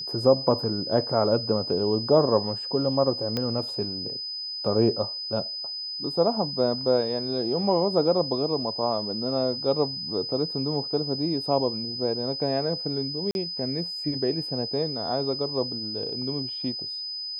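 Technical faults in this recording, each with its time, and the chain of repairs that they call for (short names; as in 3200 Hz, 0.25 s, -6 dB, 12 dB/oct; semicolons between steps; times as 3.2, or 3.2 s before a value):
tone 5000 Hz -31 dBFS
3.37 pop -14 dBFS
13.31–13.35 gap 41 ms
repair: de-click; notch 5000 Hz, Q 30; interpolate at 13.31, 41 ms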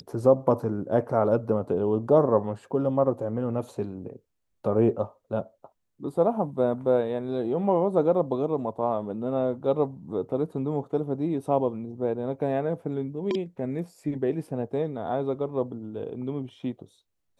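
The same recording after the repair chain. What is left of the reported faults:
none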